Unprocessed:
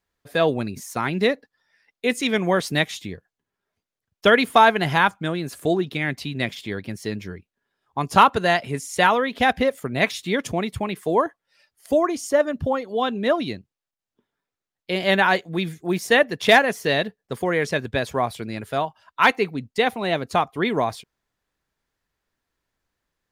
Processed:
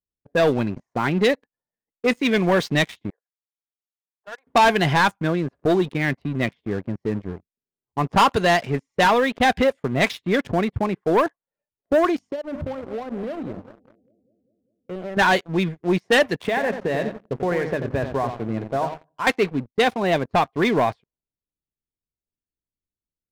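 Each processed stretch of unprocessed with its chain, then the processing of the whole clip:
3.1–4.47 resonant high shelf 2100 Hz -7.5 dB, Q 1.5 + compressor 2:1, threshold -33 dBFS + HPF 770 Hz 24 dB/oct
12.16–15.17 notches 50/100/150/200/250/300 Hz + analogue delay 0.199 s, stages 1024, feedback 72%, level -19.5 dB + compressor 16:1, threshold -28 dBFS
16.42–19.27 notches 50/100/150/200/250/300/350 Hz + compressor 12:1, threshold -21 dBFS + feedback echo 90 ms, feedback 33%, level -8 dB
whole clip: low-pass opened by the level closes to 360 Hz, open at -14 dBFS; notch 1300 Hz, Q 12; sample leveller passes 3; gain -7 dB

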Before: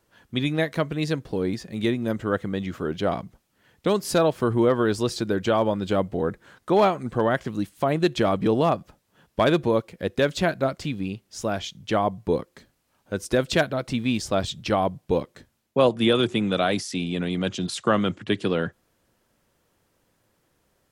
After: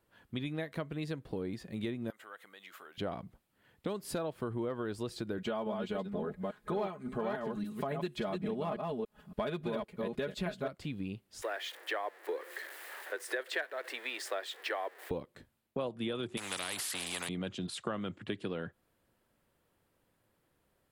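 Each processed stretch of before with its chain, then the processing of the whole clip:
2.1–2.98 high shelf 9600 Hz +11.5 dB + compressor 10:1, threshold -29 dBFS + HPF 1000 Hz
5.38–10.68 reverse delay 0.282 s, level -4.5 dB + comb 4.8 ms, depth 75%
11.42–15.11 zero-crossing step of -36.5 dBFS + steep high-pass 360 Hz 48 dB/oct + bell 1800 Hz +14 dB 0.47 oct
16.37–17.29 HPF 990 Hz 6 dB/oct + high shelf 3100 Hz +11.5 dB + spectral compressor 4:1
whole clip: bell 6000 Hz -8 dB 0.69 oct; compressor 4:1, threshold -28 dBFS; gain -6.5 dB

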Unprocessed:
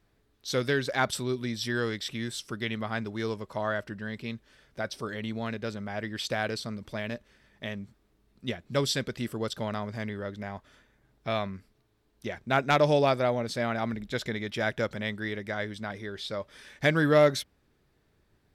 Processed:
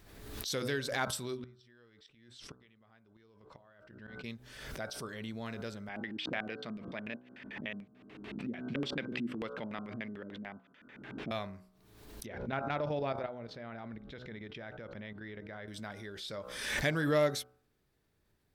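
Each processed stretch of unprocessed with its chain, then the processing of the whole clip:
1.37–4.24 LPF 3900 Hz + flipped gate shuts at -27 dBFS, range -25 dB
5.89–11.31 HPF 190 Hz + LFO low-pass square 6.8 Hz 270–2600 Hz
12.26–15.68 level quantiser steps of 12 dB + air absorption 280 m
whole clip: high shelf 7300 Hz +8 dB; de-hum 62.45 Hz, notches 25; backwards sustainer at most 48 dB/s; gain -8 dB

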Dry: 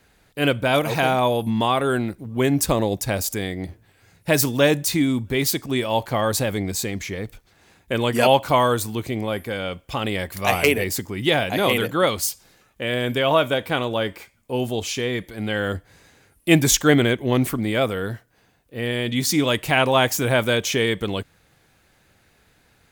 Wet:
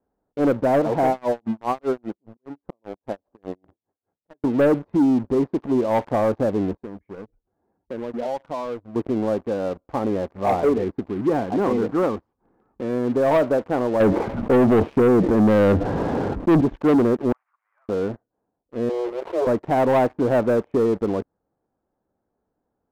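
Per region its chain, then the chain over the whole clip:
1.1–4.44 auto swell 0.644 s + low shelf 200 Hz -7 dB + dB-linear tremolo 5 Hz, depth 26 dB
6.77–8.96 spectral contrast raised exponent 1.5 + compressor 2:1, threshold -40 dBFS
10.69–13.14 gate with hold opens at -50 dBFS, closes at -53 dBFS + bell 600 Hz -9 dB 0.49 oct + upward compressor, threshold -30 dBFS
14–16.61 bell 150 Hz +5 dB 1.1 oct + fast leveller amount 70%
17.32–17.89 CVSD 16 kbps + Bessel high-pass 2100 Hz, order 6 + air absorption 60 m
18.89–19.47 minimum comb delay 2 ms + steep high-pass 330 Hz 96 dB/oct
whole clip: LPF 1000 Hz 24 dB/oct; resonant low shelf 180 Hz -7 dB, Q 1.5; sample leveller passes 3; gain -7.5 dB

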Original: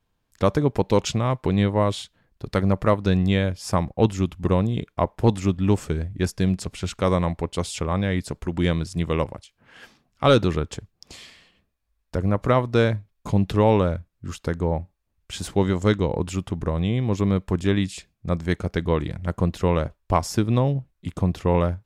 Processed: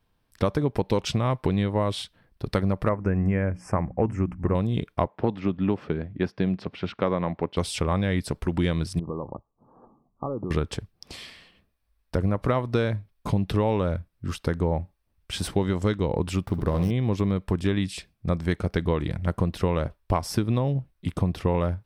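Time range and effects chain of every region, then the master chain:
2.89–4.55 Chebyshev band-stop 2000–7100 Hz + air absorption 96 m + notches 60/120/180/240/300 Hz
5.07–7.57 HPF 160 Hz + air absorption 290 m
8.99–10.51 compressor 12:1, threshold -26 dBFS + rippled Chebyshev low-pass 1200 Hz, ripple 3 dB + bell 82 Hz -8 dB 0.63 oct
16.46–16.91 median filter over 15 samples + high shelf 6900 Hz +6.5 dB + flutter echo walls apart 11.4 m, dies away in 0.39 s
whole clip: bell 6900 Hz -12.5 dB 0.2 oct; compressor, threshold -22 dBFS; gain +2.5 dB

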